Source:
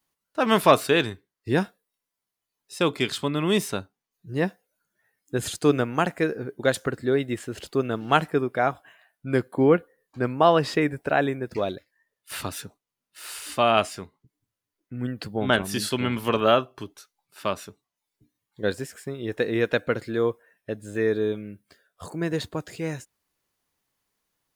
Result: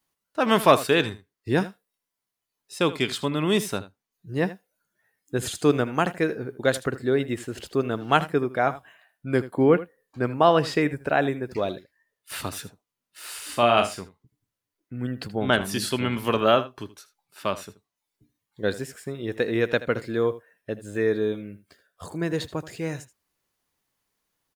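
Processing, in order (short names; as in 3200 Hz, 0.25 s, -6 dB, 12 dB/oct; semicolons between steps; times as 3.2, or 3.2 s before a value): 13.45–14.01 doubler 42 ms -7 dB; on a send: echo 79 ms -16 dB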